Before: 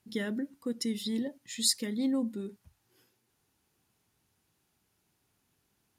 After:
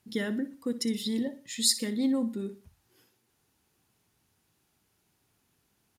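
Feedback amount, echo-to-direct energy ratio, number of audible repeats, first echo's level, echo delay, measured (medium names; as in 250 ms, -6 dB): 35%, -14.0 dB, 3, -14.5 dB, 61 ms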